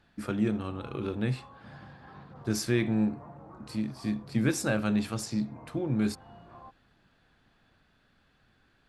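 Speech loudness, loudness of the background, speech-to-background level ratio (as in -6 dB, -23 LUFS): -31.0 LUFS, -51.0 LUFS, 20.0 dB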